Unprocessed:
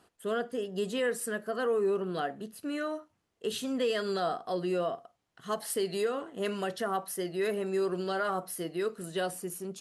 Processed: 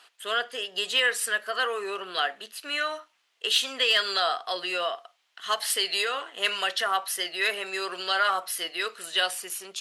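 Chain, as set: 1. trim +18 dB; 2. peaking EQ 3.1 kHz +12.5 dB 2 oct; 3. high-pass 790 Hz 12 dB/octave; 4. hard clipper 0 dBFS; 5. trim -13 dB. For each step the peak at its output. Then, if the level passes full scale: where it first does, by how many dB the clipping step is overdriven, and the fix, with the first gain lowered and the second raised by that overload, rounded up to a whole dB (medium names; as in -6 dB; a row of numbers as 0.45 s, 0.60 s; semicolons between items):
-1.0 dBFS, +5.0 dBFS, +5.0 dBFS, 0.0 dBFS, -13.0 dBFS; step 2, 5.0 dB; step 1 +13 dB, step 5 -8 dB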